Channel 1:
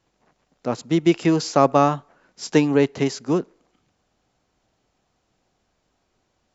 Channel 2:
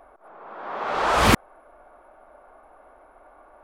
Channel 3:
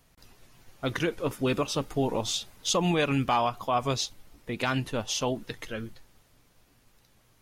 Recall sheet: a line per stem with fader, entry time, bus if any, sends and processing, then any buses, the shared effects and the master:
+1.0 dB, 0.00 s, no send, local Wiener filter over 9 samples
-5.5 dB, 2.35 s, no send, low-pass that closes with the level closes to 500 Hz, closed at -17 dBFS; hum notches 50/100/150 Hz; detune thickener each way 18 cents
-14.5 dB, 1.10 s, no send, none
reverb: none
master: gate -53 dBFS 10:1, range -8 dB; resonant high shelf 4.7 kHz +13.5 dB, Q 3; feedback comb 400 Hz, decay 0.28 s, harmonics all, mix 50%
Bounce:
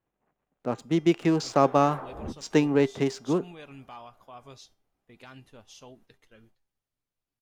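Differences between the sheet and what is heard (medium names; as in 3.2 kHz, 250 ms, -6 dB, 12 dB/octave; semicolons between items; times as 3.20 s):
stem 2: entry 2.35 s -> 0.95 s; stem 3: entry 1.10 s -> 0.60 s; master: missing resonant high shelf 4.7 kHz +13.5 dB, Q 3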